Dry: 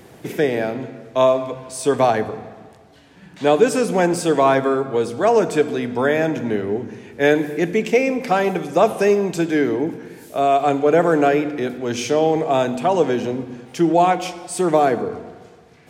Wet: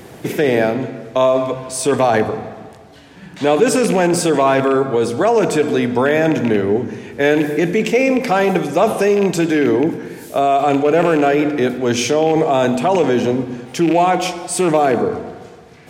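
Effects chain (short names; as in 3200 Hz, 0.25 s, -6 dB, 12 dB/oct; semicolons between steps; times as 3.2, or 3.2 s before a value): rattling part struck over -23 dBFS, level -21 dBFS; in parallel at -2 dB: negative-ratio compressor -20 dBFS, ratio -0.5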